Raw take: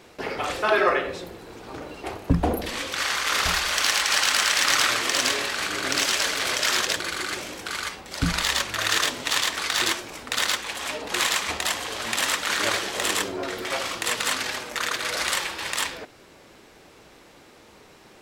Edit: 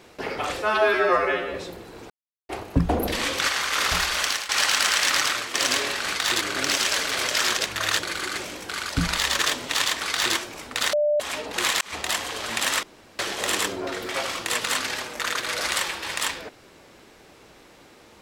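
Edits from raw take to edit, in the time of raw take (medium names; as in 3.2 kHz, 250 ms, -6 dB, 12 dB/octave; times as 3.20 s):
0.62–1.08 s: stretch 2×
1.64–2.03 s: mute
2.56–3.02 s: gain +4.5 dB
3.76–4.03 s: fade out, to -17 dB
4.61–5.08 s: fade out, to -9.5 dB
7.86–8.14 s: delete
8.64–8.95 s: move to 6.94 s
9.65–9.91 s: copy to 5.69 s
10.49–10.76 s: bleep 594 Hz -18 dBFS
11.37–11.70 s: fade in equal-power
12.39–12.75 s: room tone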